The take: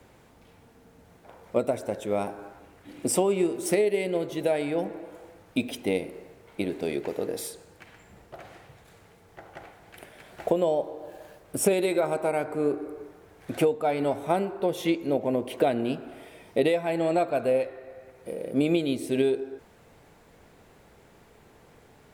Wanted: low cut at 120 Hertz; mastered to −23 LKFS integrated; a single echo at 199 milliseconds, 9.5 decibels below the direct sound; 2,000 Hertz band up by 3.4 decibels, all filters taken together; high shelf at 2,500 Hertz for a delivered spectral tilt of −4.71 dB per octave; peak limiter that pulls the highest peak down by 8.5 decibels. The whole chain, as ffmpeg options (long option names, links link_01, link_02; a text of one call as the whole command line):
ffmpeg -i in.wav -af "highpass=120,equalizer=frequency=2000:width_type=o:gain=7,highshelf=frequency=2500:gain=-5.5,alimiter=limit=-17.5dB:level=0:latency=1,aecho=1:1:199:0.335,volume=6.5dB" out.wav